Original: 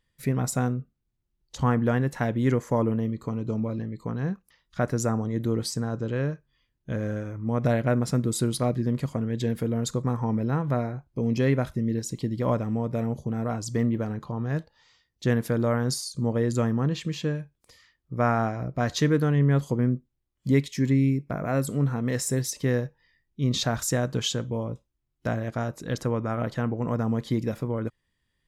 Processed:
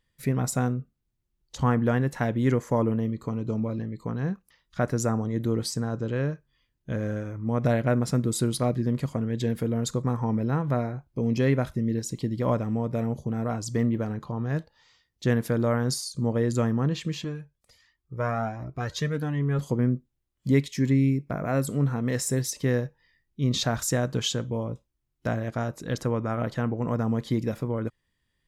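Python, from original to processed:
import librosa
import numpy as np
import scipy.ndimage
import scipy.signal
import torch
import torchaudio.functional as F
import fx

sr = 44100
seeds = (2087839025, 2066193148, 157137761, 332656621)

y = fx.comb_cascade(x, sr, direction='rising', hz=1.4, at=(17.24, 19.59))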